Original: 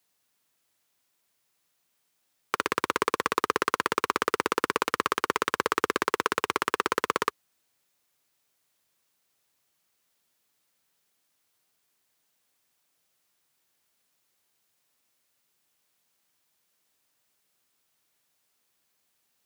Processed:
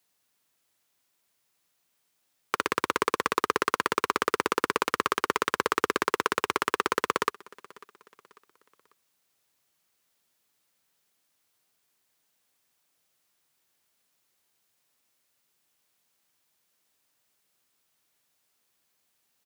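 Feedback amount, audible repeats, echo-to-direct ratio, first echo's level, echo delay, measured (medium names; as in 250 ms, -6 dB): 41%, 2, -22.5 dB, -23.5 dB, 545 ms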